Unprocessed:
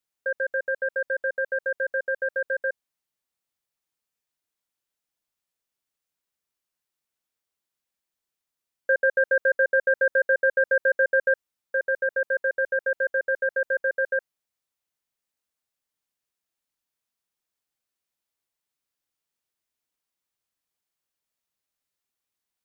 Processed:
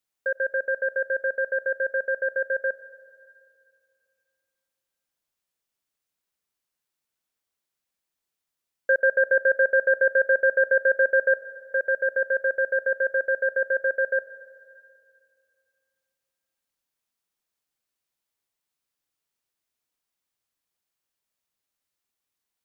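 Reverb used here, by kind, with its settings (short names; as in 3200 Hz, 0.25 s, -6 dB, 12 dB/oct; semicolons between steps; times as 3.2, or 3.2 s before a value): digital reverb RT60 2.4 s, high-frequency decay 0.9×, pre-delay 55 ms, DRR 16 dB; gain +1 dB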